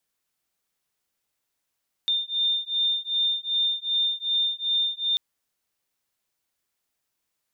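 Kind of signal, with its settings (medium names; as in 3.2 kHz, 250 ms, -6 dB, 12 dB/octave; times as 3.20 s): beating tones 3.61 kHz, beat 2.6 Hz, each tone -25.5 dBFS 3.09 s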